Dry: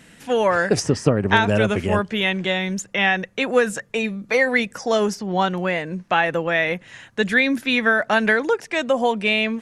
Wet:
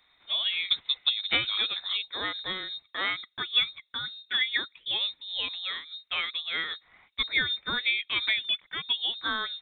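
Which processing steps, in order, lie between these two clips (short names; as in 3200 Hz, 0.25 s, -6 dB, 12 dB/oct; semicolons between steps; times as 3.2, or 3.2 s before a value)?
elliptic high-pass 160 Hz; bell 790 Hz -6 dB 0.53 oct; notch 1100 Hz, Q 18; inverted band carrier 3900 Hz; upward expander 1.5:1, over -31 dBFS; gain -6 dB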